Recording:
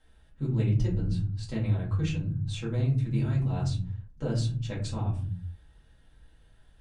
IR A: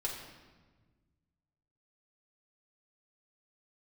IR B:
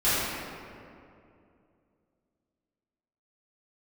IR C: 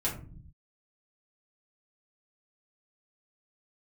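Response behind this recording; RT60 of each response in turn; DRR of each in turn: C; 1.4 s, 2.5 s, no single decay rate; -3.0 dB, -15.0 dB, -6.5 dB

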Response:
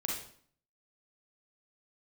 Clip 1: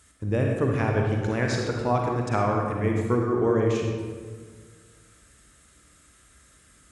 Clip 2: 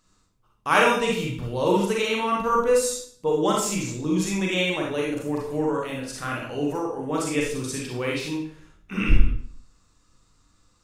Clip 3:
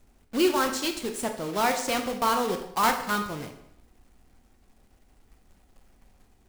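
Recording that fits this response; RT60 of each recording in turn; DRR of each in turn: 2; 1.7 s, 0.55 s, 0.75 s; 0.0 dB, -2.5 dB, 5.0 dB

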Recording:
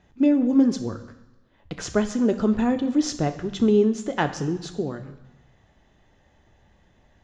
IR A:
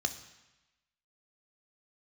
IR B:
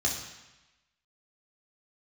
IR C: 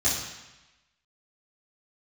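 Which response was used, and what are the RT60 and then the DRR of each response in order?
A; 1.0 s, 1.0 s, 1.0 s; 7.5 dB, -2.0 dB, -10.5 dB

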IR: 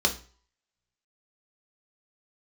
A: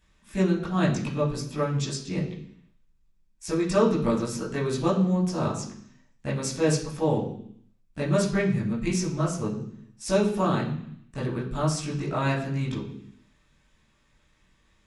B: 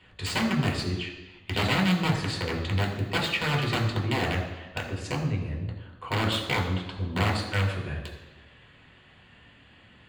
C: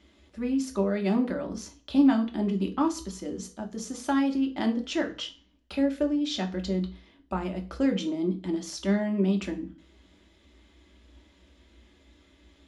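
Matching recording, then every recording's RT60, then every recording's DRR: C; 0.65 s, no single decay rate, 0.40 s; -7.0 dB, -1.5 dB, 2.0 dB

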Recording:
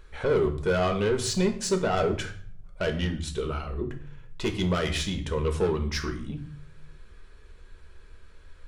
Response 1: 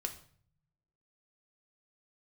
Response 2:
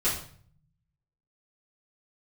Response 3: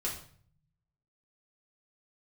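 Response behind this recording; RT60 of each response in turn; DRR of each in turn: 1; 0.55 s, 0.50 s, 0.50 s; 4.5 dB, -11.5 dB, -5.0 dB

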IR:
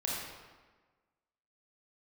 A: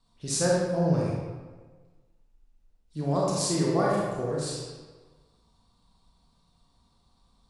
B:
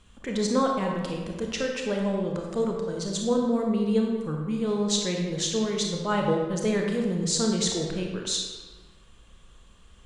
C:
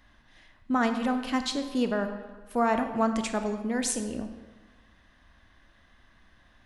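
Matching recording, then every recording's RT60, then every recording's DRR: A; 1.4 s, 1.4 s, 1.4 s; -5.0 dB, 0.5 dB, 7.0 dB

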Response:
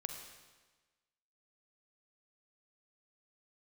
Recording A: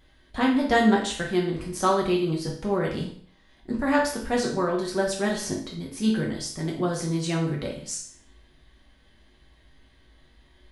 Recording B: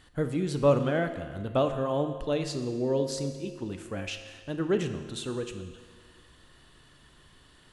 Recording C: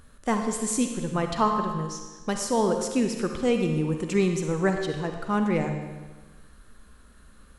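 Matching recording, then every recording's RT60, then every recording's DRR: C; 0.55 s, 1.7 s, 1.3 s; -2.5 dB, 7.5 dB, 4.5 dB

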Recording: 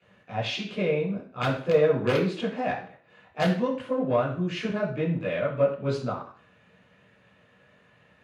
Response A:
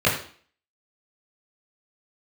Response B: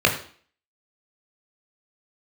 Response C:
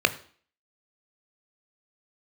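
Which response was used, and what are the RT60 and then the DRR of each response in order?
A; 0.45 s, 0.45 s, 0.45 s; -8.5 dB, 0.5 dB, 10.0 dB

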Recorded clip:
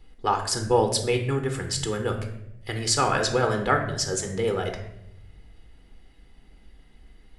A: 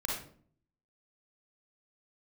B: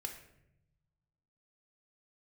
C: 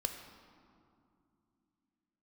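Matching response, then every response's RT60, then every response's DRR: B; 0.50 s, 0.80 s, 2.5 s; -3.5 dB, 3.5 dB, 4.5 dB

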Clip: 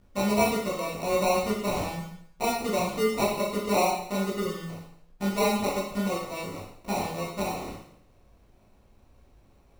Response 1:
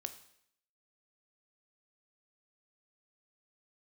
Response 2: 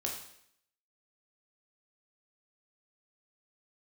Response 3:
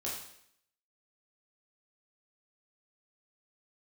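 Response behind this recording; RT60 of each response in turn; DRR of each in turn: 3; 0.70 s, 0.70 s, 0.70 s; 8.5 dB, -1.0 dB, -6.0 dB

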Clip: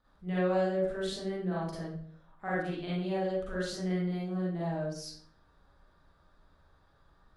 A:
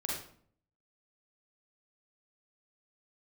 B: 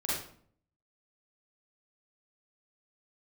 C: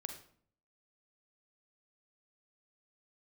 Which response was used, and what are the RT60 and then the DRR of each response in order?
B; 0.55 s, 0.55 s, 0.55 s; -4.0 dB, -8.0 dB, 5.0 dB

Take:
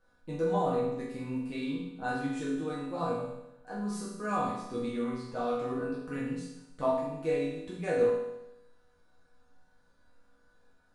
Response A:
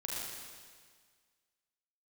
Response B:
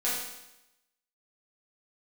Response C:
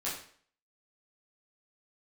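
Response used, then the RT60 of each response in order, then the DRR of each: B; 1.7 s, 0.90 s, 0.50 s; -5.0 dB, -9.5 dB, -8.0 dB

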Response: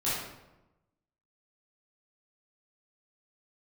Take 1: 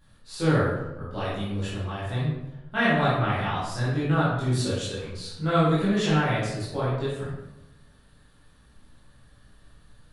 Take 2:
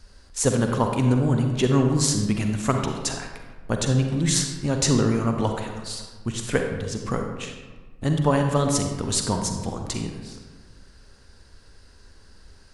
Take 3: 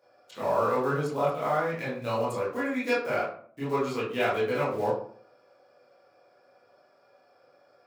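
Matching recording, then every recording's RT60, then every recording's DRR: 1; 1.0 s, 1.4 s, 0.50 s; -11.0 dB, 4.0 dB, -9.5 dB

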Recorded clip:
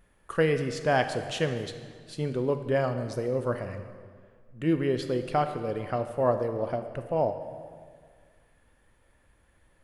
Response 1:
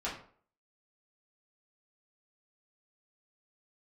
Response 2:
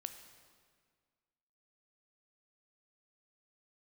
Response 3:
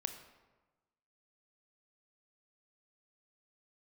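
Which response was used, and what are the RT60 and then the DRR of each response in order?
2; 0.50 s, 1.8 s, 1.2 s; -8.5 dB, 7.5 dB, 7.5 dB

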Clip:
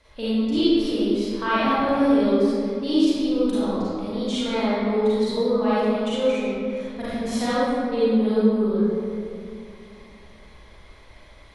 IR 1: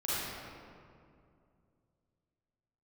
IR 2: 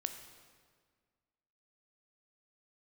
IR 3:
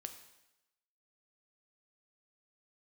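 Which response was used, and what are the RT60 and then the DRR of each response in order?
1; 2.4 s, 1.7 s, 0.95 s; -11.0 dB, 7.0 dB, 6.5 dB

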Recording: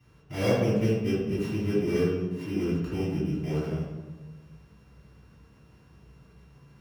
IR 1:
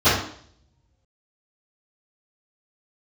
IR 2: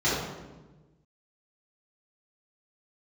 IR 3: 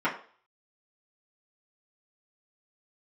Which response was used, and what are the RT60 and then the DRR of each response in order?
2; 0.60 s, 1.2 s, 0.45 s; -23.0 dB, -11.0 dB, -10.0 dB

